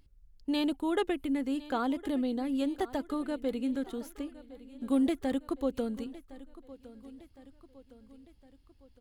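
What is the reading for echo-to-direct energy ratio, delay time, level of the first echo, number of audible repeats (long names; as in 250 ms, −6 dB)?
−16.5 dB, 1,061 ms, −18.0 dB, 3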